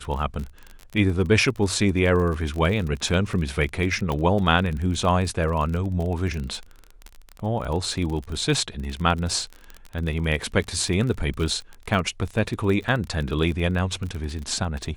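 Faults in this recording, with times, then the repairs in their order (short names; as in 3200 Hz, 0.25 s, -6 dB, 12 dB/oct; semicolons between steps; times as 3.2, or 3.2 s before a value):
crackle 33/s -28 dBFS
4.12 pop -15 dBFS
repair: de-click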